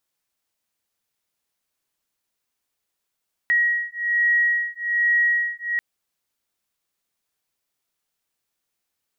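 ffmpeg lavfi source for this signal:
ffmpeg -f lavfi -i "aevalsrc='0.0891*(sin(2*PI*1900*t)+sin(2*PI*1901.2*t))':duration=2.29:sample_rate=44100" out.wav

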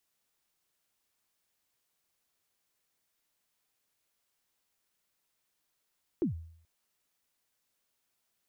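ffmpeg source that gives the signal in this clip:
ffmpeg -f lavfi -i "aevalsrc='0.0668*pow(10,-3*t/0.62)*sin(2*PI*(390*0.118/log(82/390)*(exp(log(82/390)*min(t,0.118)/0.118)-1)+82*max(t-0.118,0)))':duration=0.43:sample_rate=44100" out.wav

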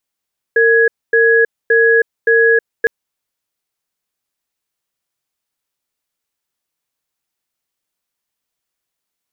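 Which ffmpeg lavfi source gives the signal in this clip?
ffmpeg -f lavfi -i "aevalsrc='0.299*(sin(2*PI*458*t)+sin(2*PI*1670*t))*clip(min(mod(t,0.57),0.32-mod(t,0.57))/0.005,0,1)':duration=2.31:sample_rate=44100" out.wav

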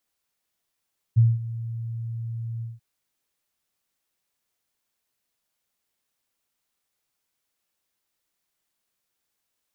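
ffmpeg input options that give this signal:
ffmpeg -f lavfi -i "aevalsrc='0.266*sin(2*PI*115*t)':duration=1.636:sample_rate=44100,afade=type=in:duration=0.022,afade=type=out:start_time=0.022:duration=0.204:silence=0.141,afade=type=out:start_time=1.46:duration=0.176" out.wav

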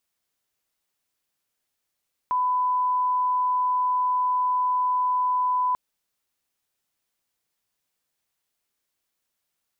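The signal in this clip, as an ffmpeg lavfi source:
ffmpeg -f lavfi -i "sine=frequency=1000:duration=3.44:sample_rate=44100,volume=-1.94dB" out.wav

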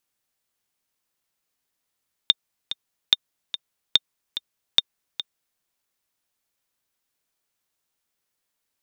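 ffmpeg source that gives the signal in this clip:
ffmpeg -f lavfi -i "aevalsrc='pow(10,(-1.5-12.5*gte(mod(t,2*60/145),60/145))/20)*sin(2*PI*3630*mod(t,60/145))*exp(-6.91*mod(t,60/145)/0.03)':duration=3.31:sample_rate=44100" out.wav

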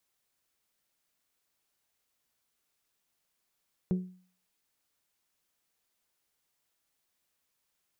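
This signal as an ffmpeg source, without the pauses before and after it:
ffmpeg -f lavfi -i "aevalsrc='0.075*pow(10,-3*t/0.46)*sin(2*PI*183*t)+0.0266*pow(10,-3*t/0.283)*sin(2*PI*366*t)+0.00944*pow(10,-3*t/0.249)*sin(2*PI*439.2*t)+0.00335*pow(10,-3*t/0.213)*sin(2*PI*549*t)+0.00119*pow(10,-3*t/0.174)*sin(2*PI*732*t)':duration=0.89:sample_rate=44100" out.wav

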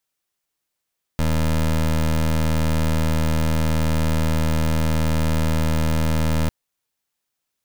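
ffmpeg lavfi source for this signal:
ffmpeg -f lavfi -i "aevalsrc='0.112*(2*lt(mod(79.2*t,1),0.21)-1)':duration=5.3:sample_rate=44100" out.wav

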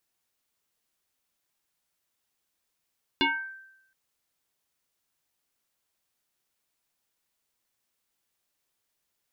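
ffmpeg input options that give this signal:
ffmpeg -f lavfi -i "aevalsrc='0.119*pow(10,-3*t/0.84)*sin(2*PI*1560*t+3.6*pow(10,-3*t/0.47)*sin(2*PI*0.41*1560*t))':duration=0.72:sample_rate=44100" out.wav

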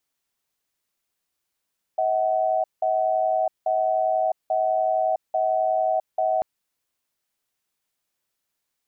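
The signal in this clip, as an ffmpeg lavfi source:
ffmpeg -f lavfi -i "aevalsrc='0.0794*(sin(2*PI*640*t)+sin(2*PI*751*t))*clip(min(mod(t,0.84),0.66-mod(t,0.84))/0.005,0,1)':duration=4.44:sample_rate=44100" out.wav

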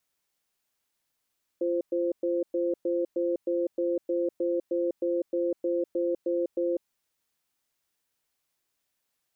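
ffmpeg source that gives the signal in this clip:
ffmpeg -f lavfi -i "aevalsrc='0.0447*(sin(2*PI*345*t)+sin(2*PI*521*t))*clip(min(mod(t,0.31),0.2-mod(t,0.31))/0.005,0,1)':duration=5.18:sample_rate=44100" out.wav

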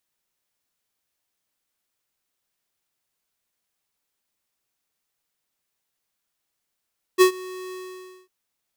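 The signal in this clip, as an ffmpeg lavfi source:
ffmpeg -f lavfi -i "aevalsrc='0.266*(2*lt(mod(370*t,1),0.5)-1)':duration=1.101:sample_rate=44100,afade=type=in:duration=0.034,afade=type=out:start_time=0.034:duration=0.097:silence=0.0668,afade=type=out:start_time=0.54:duration=0.561" out.wav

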